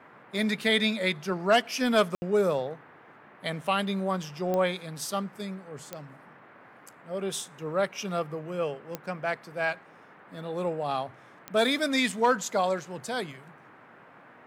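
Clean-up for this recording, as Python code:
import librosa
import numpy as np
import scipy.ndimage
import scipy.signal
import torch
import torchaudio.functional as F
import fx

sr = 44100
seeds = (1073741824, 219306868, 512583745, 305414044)

y = fx.fix_declick_ar(x, sr, threshold=10.0)
y = fx.fix_ambience(y, sr, seeds[0], print_start_s=2.91, print_end_s=3.41, start_s=2.15, end_s=2.22)
y = fx.noise_reduce(y, sr, print_start_s=2.91, print_end_s=3.41, reduce_db=20.0)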